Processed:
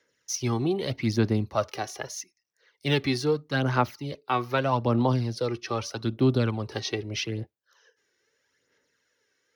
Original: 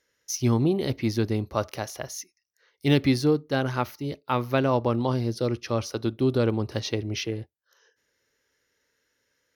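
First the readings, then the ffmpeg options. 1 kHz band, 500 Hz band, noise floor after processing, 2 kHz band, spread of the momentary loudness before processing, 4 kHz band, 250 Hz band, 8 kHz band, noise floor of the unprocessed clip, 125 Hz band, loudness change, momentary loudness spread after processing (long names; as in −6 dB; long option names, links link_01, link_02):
+1.5 dB, −2.0 dB, −75 dBFS, +1.5 dB, 11 LU, +1.0 dB, −2.5 dB, −0.5 dB, −76 dBFS, −1.0 dB, −1.0 dB, 10 LU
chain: -filter_complex "[0:a]highpass=120,equalizer=frequency=13000:width_type=o:width=0.58:gain=-11.5,acrossover=split=260|560|3400[link_01][link_02][link_03][link_04];[link_02]acompressor=threshold=-38dB:ratio=6[link_05];[link_01][link_05][link_03][link_04]amix=inputs=4:normalize=0,aphaser=in_gain=1:out_gain=1:delay=2.7:decay=0.5:speed=0.8:type=sinusoidal"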